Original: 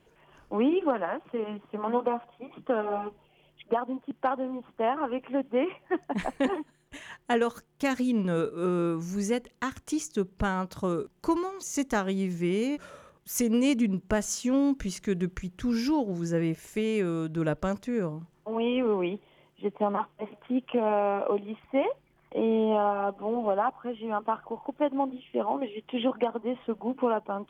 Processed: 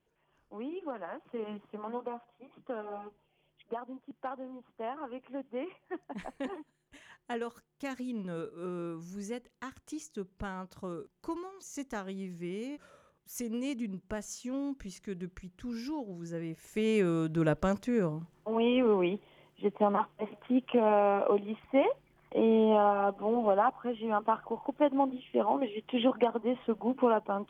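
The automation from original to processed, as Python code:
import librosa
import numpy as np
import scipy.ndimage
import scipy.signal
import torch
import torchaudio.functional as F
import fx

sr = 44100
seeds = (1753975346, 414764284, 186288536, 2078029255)

y = fx.gain(x, sr, db=fx.line((0.67, -15.5), (1.56, -4.0), (1.94, -11.0), (16.49, -11.0), (16.89, 0.0)))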